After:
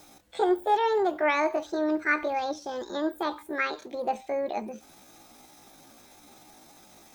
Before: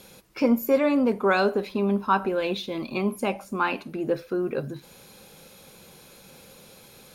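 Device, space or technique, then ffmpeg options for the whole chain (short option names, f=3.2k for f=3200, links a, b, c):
chipmunk voice: -filter_complex "[0:a]asetrate=68011,aresample=44100,atempo=0.64842,acrossover=split=3300[a][b];[b]acompressor=threshold=-44dB:ratio=4:attack=1:release=60[c];[a][c]amix=inputs=2:normalize=0,volume=-3dB"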